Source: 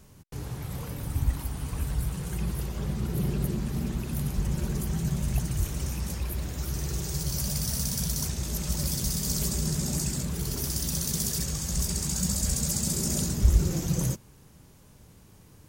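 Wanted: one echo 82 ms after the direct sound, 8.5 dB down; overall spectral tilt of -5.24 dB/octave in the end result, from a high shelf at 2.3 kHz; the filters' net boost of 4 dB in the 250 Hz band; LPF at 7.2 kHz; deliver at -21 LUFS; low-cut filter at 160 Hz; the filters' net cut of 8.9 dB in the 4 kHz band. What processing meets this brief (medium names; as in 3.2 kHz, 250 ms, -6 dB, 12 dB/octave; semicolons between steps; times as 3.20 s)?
high-pass 160 Hz; low-pass 7.2 kHz; peaking EQ 250 Hz +8.5 dB; treble shelf 2.3 kHz -3.5 dB; peaking EQ 4 kHz -7.5 dB; delay 82 ms -8.5 dB; trim +10.5 dB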